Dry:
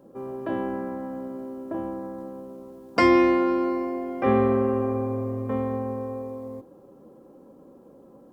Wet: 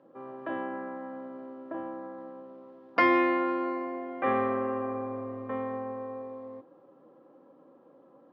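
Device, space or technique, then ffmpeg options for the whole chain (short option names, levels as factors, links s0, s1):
kitchen radio: -af "highpass=210,equalizer=f=210:t=q:w=4:g=-9,equalizer=f=400:t=q:w=4:g=-7,equalizer=f=1200:t=q:w=4:g=4,equalizer=f=1800:t=q:w=4:g=5,lowpass=f=3700:w=0.5412,lowpass=f=3700:w=1.3066,volume=0.668"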